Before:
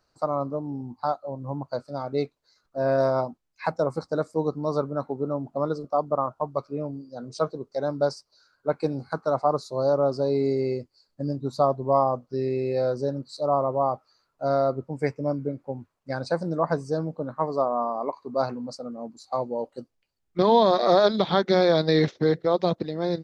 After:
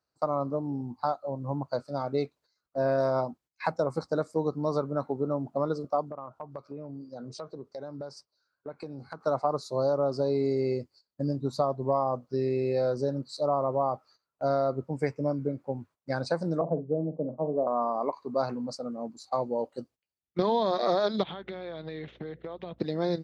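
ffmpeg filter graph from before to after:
-filter_complex "[0:a]asettb=1/sr,asplit=3[a][b][c];[a]atrim=end=6.104[d];[b]atrim=start=6.1:end=9.21,asetpts=PTS-STARTPTS,afade=t=in:d=0.004:c=qsin,afade=t=out:st=3.106:d=0.004:c=qsin,acompressor=threshold=-36dB:ratio=6:attack=3.2:release=140:knee=1:detection=peak,highshelf=f=5.2k:g=-6.5[e];[c]atrim=start=9.206[f];[d][e]acrossfade=d=0.004:c1=hsin:c2=qsin[g];[g][f]acrossfade=d=0.004:c1=qsin:c2=hsin,asettb=1/sr,asplit=3[h][i][j];[h]atrim=end=16.614[k];[i]atrim=start=16.61:end=17.67,asetpts=PTS-STARTPTS,afade=t=in:d=0.004:c=qsin,afade=t=out:st=1.056:d=0.004:c=qsin,asuperpass=centerf=300:order=8:qfactor=0.56,asplit=2[l][m];[m]adelay=47,volume=-12dB[n];[l][n]amix=inputs=2:normalize=0,atrim=end_sample=46746[o];[j]atrim=start=17.666[p];[k][o]acrossfade=d=0.004:c1=hsin:c2=qsin[q];[q][p]acrossfade=d=0.004:c1=qsin:c2=hsin,asettb=1/sr,asplit=3[r][s][t];[r]atrim=end=21.234[u];[s]atrim=start=21.23:end=22.79,asetpts=PTS-STARTPTS,afade=t=in:d=0.004:c=qsin,afade=t=out:st=1.556:d=0.004:c=qsin,highshelf=f=4k:t=q:w=3:g=-10.5,acompressor=threshold=-34dB:ratio=16:attack=3.2:release=140:knee=1:detection=peak,aeval=exprs='val(0)+0.00112*(sin(2*PI*60*n/s)+sin(2*PI*2*60*n/s)/2+sin(2*PI*3*60*n/s)/3+sin(2*PI*4*60*n/s)/4+sin(2*PI*5*60*n/s)/5)':c=same[v];[t]atrim=start=22.786[w];[u][v]acrossfade=d=0.004:c1=hsin:c2=qsin[x];[x][w]acrossfade=d=0.004:c1=qsin:c2=hsin,highpass=56,agate=range=-14dB:threshold=-53dB:ratio=16:detection=peak,acompressor=threshold=-23dB:ratio=4"

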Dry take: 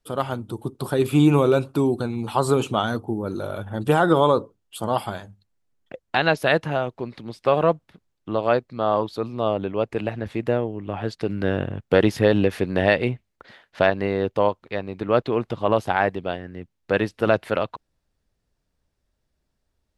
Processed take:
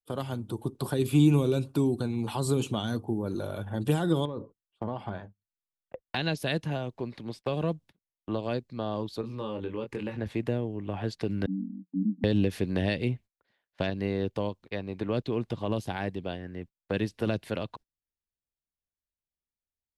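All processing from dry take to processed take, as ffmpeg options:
-filter_complex "[0:a]asettb=1/sr,asplit=3[a][b][c];[a]atrim=end=4.254[d];[b]atrim=start=4.25:end=6.08,asetpts=PTS-STARTPTS,afade=t=in:d=0.004:c=qsin,afade=t=out:st=1.826:d=0.004:c=qsin,lowpass=2k,acompressor=threshold=-20dB:ratio=10:attack=3.2:release=140:knee=1:detection=peak[e];[c]atrim=start=6.076[f];[d][e]acrossfade=d=0.004:c1=hsin:c2=qsin[g];[g][f]acrossfade=d=0.004:c1=qsin:c2=hsin,asettb=1/sr,asplit=3[h][i][j];[h]atrim=end=9.214[k];[i]atrim=start=9.21:end=10.17,asetpts=PTS-STARTPTS,afade=t=in:d=0.004:c=qsin,afade=t=out:st=0.956:d=0.004:c=qsin,asuperstop=centerf=680:order=4:qfactor=3.4,acompressor=threshold=-30dB:ratio=2:attack=3.2:release=140:knee=1:detection=peak,asplit=2[l][m];[m]adelay=23,volume=-5dB[n];[l][n]amix=inputs=2:normalize=0,atrim=end_sample=42336[o];[j]atrim=start=10.166[p];[k][o]acrossfade=d=0.004:c1=hsin:c2=qsin[q];[q][p]acrossfade=d=0.004:c1=qsin:c2=hsin,asettb=1/sr,asplit=3[r][s][t];[r]atrim=end=11.464[u];[s]atrim=start=11.46:end=12.24,asetpts=PTS-STARTPTS,afade=t=in:d=0.004:c=qsin,afade=t=out:st=0.776:d=0.004:c=qsin,asuperpass=centerf=230:order=20:qfactor=2,acompressor=mode=upward:threshold=-34dB:ratio=2.5:attack=3.2:release=140:knee=2.83:detection=peak[v];[t]atrim=start=12.236[w];[u][v]acrossfade=d=0.004:c1=hsin:c2=qsin[x];[x][w]acrossfade=d=0.004:c1=qsin:c2=hsin,agate=range=-24dB:threshold=-40dB:ratio=16:detection=peak,bandreject=f=1.3k:w=11,acrossover=split=330|3000[y][z][aa];[z]acompressor=threshold=-32dB:ratio=6[ab];[y][ab][aa]amix=inputs=3:normalize=0,volume=-2.5dB"

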